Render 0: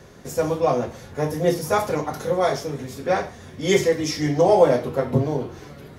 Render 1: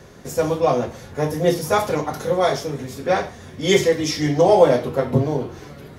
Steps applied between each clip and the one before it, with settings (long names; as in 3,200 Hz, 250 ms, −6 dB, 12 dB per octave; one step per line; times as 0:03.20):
dynamic equaliser 3,400 Hz, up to +4 dB, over −44 dBFS, Q 2.2
level +2 dB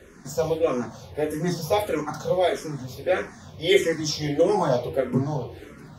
frequency shifter mixed with the dry sound −1.6 Hz
level −1.5 dB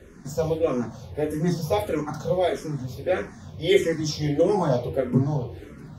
low-shelf EQ 340 Hz +8.5 dB
level −3.5 dB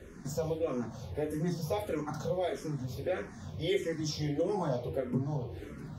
downward compressor 2 to 1, threshold −33 dBFS, peak gain reduction 11.5 dB
level −2 dB